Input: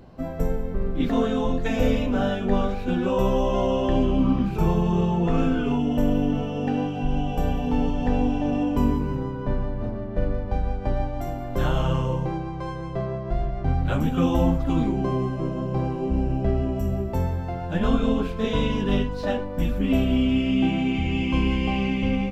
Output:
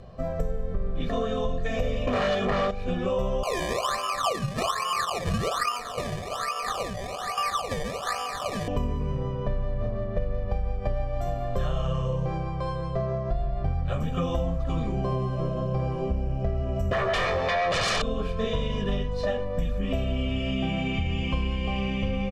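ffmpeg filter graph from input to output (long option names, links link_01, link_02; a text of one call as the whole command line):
ffmpeg -i in.wav -filter_complex "[0:a]asettb=1/sr,asplit=3[link_01][link_02][link_03];[link_01]atrim=end=2.074[link_04];[link_02]atrim=start=2.07:end=2.71,asetpts=PTS-STARTPTS,afade=type=in:duration=0.004:curve=qsin,afade=type=out:start_time=0.636:duration=0.004:curve=qsin,highpass=frequency=270:poles=1,aeval=exprs='0.237*sin(PI/2*3.55*val(0)/0.237)':channel_layout=same[link_05];[link_03]atrim=start=2.706[link_06];[link_04][link_05]acrossfade=duration=0.004:curve1=hsin:curve2=qsin[link_07];[link_07][link_06]acrossfade=duration=0.004:curve1=qsin:curve2=hsin,asettb=1/sr,asplit=3[link_08][link_09][link_10];[link_08]atrim=end=3.434[link_11];[link_09]atrim=start=3.43:end=8.68,asetpts=PTS-STARTPTS,afade=type=in:duration=0.004:curve=qsin,afade=type=out:start_time=5.246:duration=0.004:curve=qsin,highpass=frequency=1200:width_type=q:width=11,acrusher=samples=22:mix=1:aa=0.000001:lfo=1:lforange=22:lforate=1.2[link_12];[link_10]atrim=start=8.676[link_13];[link_11][link_12]acrossfade=duration=0.004:curve1=hsin:curve2=qsin[link_14];[link_14][link_13]acrossfade=duration=0.004:curve1=qsin:curve2=hsin,asettb=1/sr,asplit=3[link_15][link_16][link_17];[link_15]atrim=end=16.914[link_18];[link_16]atrim=start=16.91:end=18.02,asetpts=PTS-STARTPTS,afade=type=in:duration=0.004:curve=qsin,afade=type=out:start_time=1.106:duration=0.004:curve=qsin,asuperstop=centerf=1400:order=8:qfactor=1.8,acrossover=split=320 5700:gain=0.0794 1 0.126[link_19][link_20][link_21];[link_19][link_20][link_21]amix=inputs=3:normalize=0,aeval=exprs='0.15*sin(PI/2*8.91*val(0)/0.15)':channel_layout=same[link_22];[link_17]atrim=start=18.016[link_23];[link_18][link_22]acrossfade=duration=0.004:curve1=hsin:curve2=qsin[link_24];[link_24][link_23]acrossfade=duration=0.004:curve1=qsin:curve2=hsin,lowpass=9300,aecho=1:1:1.7:0.71,acompressor=threshold=-23dB:ratio=6" out.wav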